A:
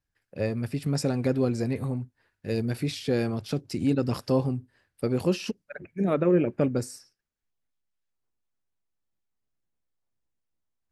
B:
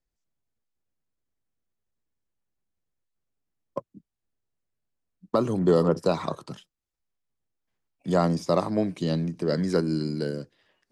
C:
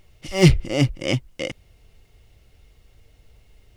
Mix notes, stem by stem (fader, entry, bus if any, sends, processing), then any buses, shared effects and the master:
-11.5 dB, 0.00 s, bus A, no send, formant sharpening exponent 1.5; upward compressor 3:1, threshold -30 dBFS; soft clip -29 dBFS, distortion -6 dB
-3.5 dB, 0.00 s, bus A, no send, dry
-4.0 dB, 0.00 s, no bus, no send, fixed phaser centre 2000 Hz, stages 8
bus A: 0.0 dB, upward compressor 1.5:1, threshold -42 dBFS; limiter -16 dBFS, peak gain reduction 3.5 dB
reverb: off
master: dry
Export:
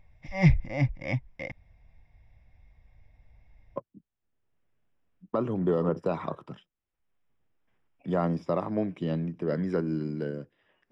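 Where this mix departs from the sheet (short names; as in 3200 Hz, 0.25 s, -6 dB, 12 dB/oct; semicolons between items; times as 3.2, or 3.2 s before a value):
stem A: muted; master: extra polynomial smoothing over 25 samples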